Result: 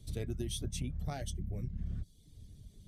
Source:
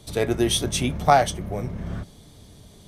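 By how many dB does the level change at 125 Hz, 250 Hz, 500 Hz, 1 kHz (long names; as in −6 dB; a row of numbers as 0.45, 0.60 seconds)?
−9.0, −16.0, −22.5, −29.5 decibels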